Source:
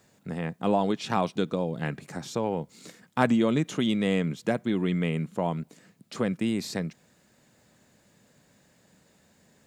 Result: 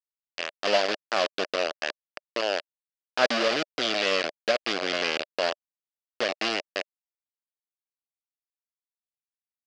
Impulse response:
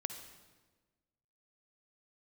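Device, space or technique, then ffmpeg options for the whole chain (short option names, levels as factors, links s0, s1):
hand-held game console: -af "acrusher=bits=3:mix=0:aa=0.000001,highpass=470,equalizer=f=600:t=q:w=4:g=8,equalizer=f=890:t=q:w=4:g=-7,equalizer=f=1700:t=q:w=4:g=3,equalizer=f=2800:t=q:w=4:g=6,equalizer=f=4800:t=q:w=4:g=8,lowpass=f=5500:w=0.5412,lowpass=f=5500:w=1.3066"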